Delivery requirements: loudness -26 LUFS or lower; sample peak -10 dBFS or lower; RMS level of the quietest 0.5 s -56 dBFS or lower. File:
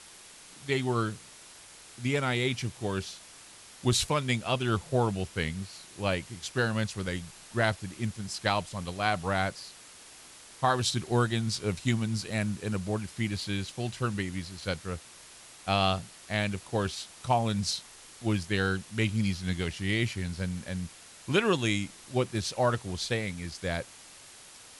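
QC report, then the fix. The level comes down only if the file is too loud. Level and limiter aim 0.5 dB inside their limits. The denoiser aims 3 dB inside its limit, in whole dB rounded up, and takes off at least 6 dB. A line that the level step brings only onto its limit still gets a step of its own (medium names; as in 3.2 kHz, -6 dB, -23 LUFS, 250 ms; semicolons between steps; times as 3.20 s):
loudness -30.5 LUFS: pass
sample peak -11.5 dBFS: pass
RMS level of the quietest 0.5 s -51 dBFS: fail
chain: noise reduction 8 dB, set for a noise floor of -51 dBFS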